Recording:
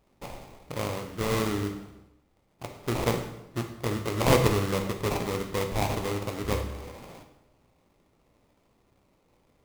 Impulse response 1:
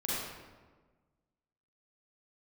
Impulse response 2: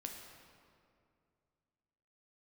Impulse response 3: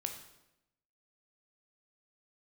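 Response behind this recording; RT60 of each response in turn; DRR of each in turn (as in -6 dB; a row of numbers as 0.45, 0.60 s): 3; 1.4, 2.4, 0.90 s; -8.0, 1.5, 4.5 dB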